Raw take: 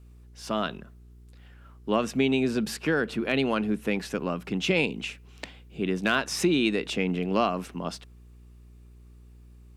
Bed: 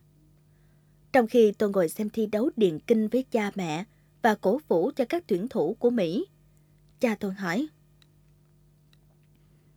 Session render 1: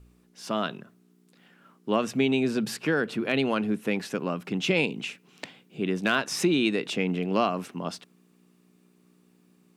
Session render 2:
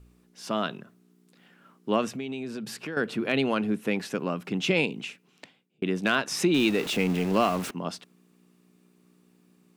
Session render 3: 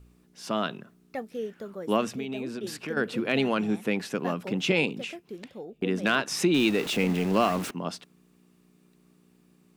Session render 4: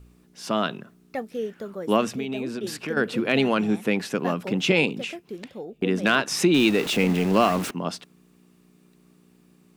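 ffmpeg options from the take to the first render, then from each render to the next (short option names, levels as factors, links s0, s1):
-af "bandreject=f=60:t=h:w=4,bandreject=f=120:t=h:w=4"
-filter_complex "[0:a]asettb=1/sr,asplit=3[s0][s1][s2];[s0]atrim=end=2.084[s3];[s1]atrim=start=2.08:end=2.97,asetpts=PTS-STARTPTS,afade=t=in:d=0.004:c=qsin,afade=t=out:st=0.886:d=0.004:c=qsin,acompressor=threshold=0.0158:ratio=2.5:attack=3.2:release=140:knee=1:detection=peak[s4];[s2]atrim=start=2.966[s5];[s3][s4]acrossfade=d=0.004:c1=hsin:c2=qsin[s6];[s6][s5]acrossfade=d=0.004:c1=qsin:c2=hsin,asettb=1/sr,asplit=3[s7][s8][s9];[s7]atrim=end=6.544[s10];[s8]atrim=start=6.54:end=7.71,asetpts=PTS-STARTPTS,afade=t=in:d=0.004:c=qsin,afade=t=out:st=1.166:d=0.004:c=qsin,aeval=exprs='val(0)+0.5*0.0251*sgn(val(0))':c=same[s11];[s9]atrim=start=7.706[s12];[s10][s11]acrossfade=d=0.004:c1=hsin:c2=qsin[s13];[s13][s12]acrossfade=d=0.004:c1=qsin:c2=hsin,asplit=2[s14][s15];[s14]atrim=end=5.82,asetpts=PTS-STARTPTS,afade=t=out:st=4.79:d=1.03[s16];[s15]atrim=start=5.82,asetpts=PTS-STARTPTS,afade=t=in:d=0.004:c=hsin[s17];[s16][s17]concat=n=2:v=0:a=1"
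-filter_complex "[1:a]volume=0.188[s0];[0:a][s0]amix=inputs=2:normalize=0"
-af "volume=1.58"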